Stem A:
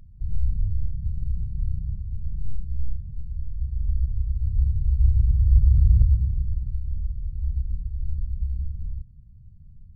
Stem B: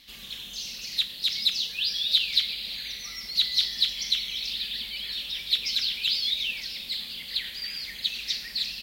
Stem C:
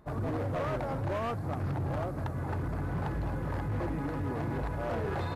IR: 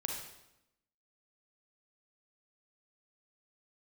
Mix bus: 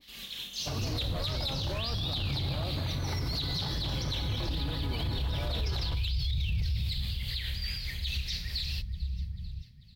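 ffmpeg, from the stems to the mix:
-filter_complex "[0:a]highpass=f=180:p=1,adelay=600,volume=1.41[s0];[1:a]tremolo=f=4.8:d=0.47,adynamicequalizer=threshold=0.00631:dfrequency=1500:dqfactor=0.7:tfrequency=1500:tqfactor=0.7:attack=5:release=100:ratio=0.375:range=3:mode=cutabove:tftype=highshelf,volume=0.891,asplit=3[s1][s2][s3];[s2]volume=0.299[s4];[s3]volume=0.1[s5];[2:a]acrossover=split=160|3000[s6][s7][s8];[s7]acompressor=threshold=0.00891:ratio=3[s9];[s6][s9][s8]amix=inputs=3:normalize=0,adelay=600,volume=1.12,asplit=2[s10][s11];[s11]volume=0.335[s12];[3:a]atrim=start_sample=2205[s13];[s4][s12]amix=inputs=2:normalize=0[s14];[s14][s13]afir=irnorm=-1:irlink=0[s15];[s5]aecho=0:1:442|884|1326|1768|2210|2652|3094|3536|3978:1|0.57|0.325|0.185|0.106|0.0602|0.0343|0.0195|0.0111[s16];[s0][s1][s10][s15][s16]amix=inputs=5:normalize=0,alimiter=limit=0.0631:level=0:latency=1:release=29"

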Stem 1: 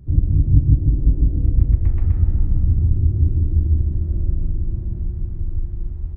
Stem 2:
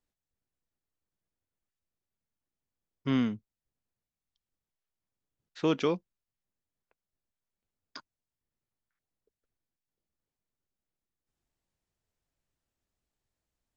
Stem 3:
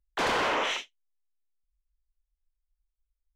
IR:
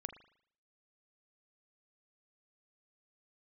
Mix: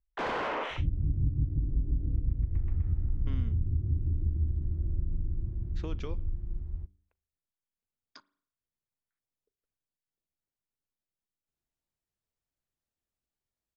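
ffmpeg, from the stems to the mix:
-filter_complex "[0:a]adynamicequalizer=threshold=0.00447:dfrequency=690:dqfactor=1.4:tfrequency=690:tqfactor=1.4:attack=5:release=100:ratio=0.375:range=2:mode=cutabove:tftype=bell,adelay=700,volume=0.282,asplit=2[s0][s1];[s1]volume=0.237[s2];[1:a]acompressor=threshold=0.0316:ratio=6,adelay=200,volume=0.335,asplit=2[s3][s4];[s4]volume=0.447[s5];[2:a]adynamicsmooth=sensitivity=0.5:basefreq=2200,volume=0.631[s6];[3:a]atrim=start_sample=2205[s7];[s2][s5]amix=inputs=2:normalize=0[s8];[s8][s7]afir=irnorm=-1:irlink=0[s9];[s0][s3][s6][s9]amix=inputs=4:normalize=0,bandreject=f=95.5:t=h:w=4,bandreject=f=191:t=h:w=4,bandreject=f=286.5:t=h:w=4,bandreject=f=382:t=h:w=4,acompressor=threshold=0.0631:ratio=4"

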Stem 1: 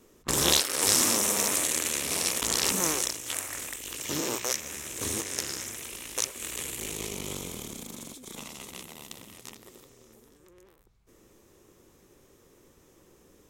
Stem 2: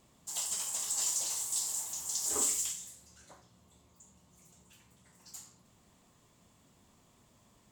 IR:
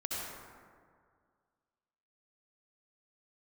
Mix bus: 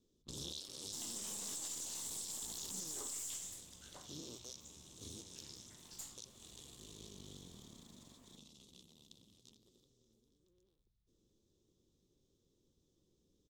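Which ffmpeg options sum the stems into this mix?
-filter_complex "[0:a]firequalizer=gain_entry='entry(170,0);entry(730,-14);entry(2000,-24);entry(3500,2);entry(11000,-15)':delay=0.05:min_phase=1,volume=0.188[s0];[1:a]aeval=exprs='if(lt(val(0),0),0.708*val(0),val(0))':c=same,acompressor=threshold=0.0126:ratio=6,adelay=650,volume=1[s1];[s0][s1]amix=inputs=2:normalize=0,alimiter=level_in=2.99:limit=0.0631:level=0:latency=1:release=36,volume=0.335"

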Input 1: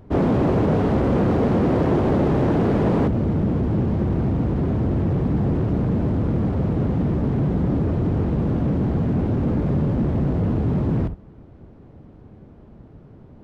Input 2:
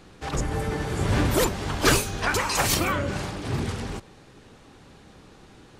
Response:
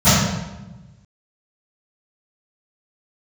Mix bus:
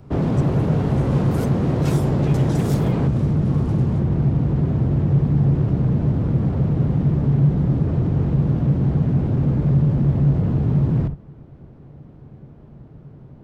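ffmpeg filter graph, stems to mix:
-filter_complex "[0:a]volume=0.944[s0];[1:a]aeval=exprs='val(0)*sin(2*PI*980*n/s)':c=same,volume=0.266[s1];[s0][s1]amix=inputs=2:normalize=0,equalizer=f=140:w=4.6:g=11,acrossover=split=180|3000[s2][s3][s4];[s3]acompressor=threshold=0.0501:ratio=2[s5];[s2][s5][s4]amix=inputs=3:normalize=0"

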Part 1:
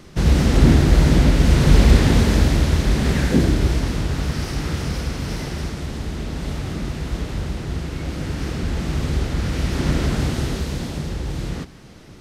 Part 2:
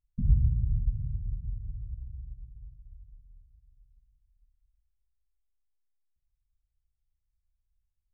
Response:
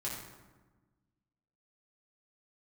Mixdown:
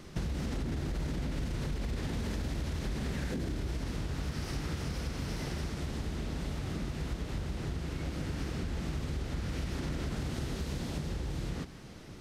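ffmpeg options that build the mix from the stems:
-filter_complex "[0:a]alimiter=limit=0.251:level=0:latency=1:release=33,volume=0.562[s0];[1:a]adelay=1100,volume=0.473[s1];[s0][s1]amix=inputs=2:normalize=0,acompressor=threshold=0.0251:ratio=6"

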